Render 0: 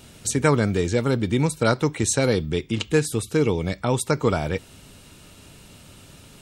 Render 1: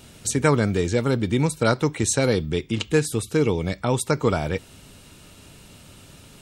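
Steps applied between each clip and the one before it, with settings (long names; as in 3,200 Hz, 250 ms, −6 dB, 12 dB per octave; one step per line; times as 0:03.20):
no processing that can be heard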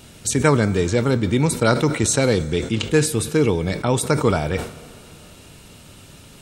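dense smooth reverb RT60 3.1 s, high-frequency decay 0.8×, DRR 16.5 dB
level that may fall only so fast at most 110 dB per second
level +2.5 dB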